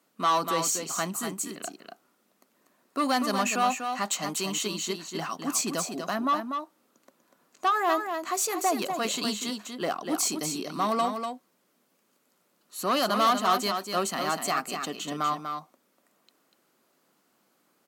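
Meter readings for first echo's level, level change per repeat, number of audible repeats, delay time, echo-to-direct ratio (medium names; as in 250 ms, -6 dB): -6.5 dB, no regular repeats, 1, 243 ms, -6.5 dB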